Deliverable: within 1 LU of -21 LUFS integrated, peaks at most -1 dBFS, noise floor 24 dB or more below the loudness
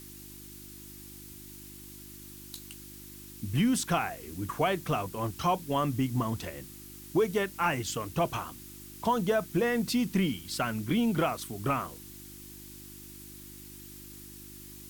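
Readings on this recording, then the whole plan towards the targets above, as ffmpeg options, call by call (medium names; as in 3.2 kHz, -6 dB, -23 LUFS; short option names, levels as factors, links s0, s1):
hum 50 Hz; highest harmonic 350 Hz; hum level -50 dBFS; noise floor -47 dBFS; noise floor target -55 dBFS; loudness -30.5 LUFS; peak level -14.5 dBFS; loudness target -21.0 LUFS
-> -af "bandreject=f=50:t=h:w=4,bandreject=f=100:t=h:w=4,bandreject=f=150:t=h:w=4,bandreject=f=200:t=h:w=4,bandreject=f=250:t=h:w=4,bandreject=f=300:t=h:w=4,bandreject=f=350:t=h:w=4"
-af "afftdn=nr=8:nf=-47"
-af "volume=2.99"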